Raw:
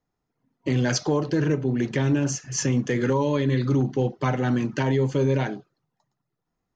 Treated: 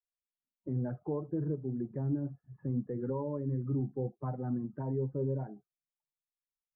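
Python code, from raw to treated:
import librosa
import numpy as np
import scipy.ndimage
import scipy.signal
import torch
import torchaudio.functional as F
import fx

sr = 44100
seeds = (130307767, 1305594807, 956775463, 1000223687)

y = fx.bin_expand(x, sr, power=1.5)
y = fx.bessel_lowpass(y, sr, hz=fx.steps((0.0, 720.0), (5.55, 1400.0)), order=8)
y = F.gain(torch.from_numpy(y), -8.5).numpy()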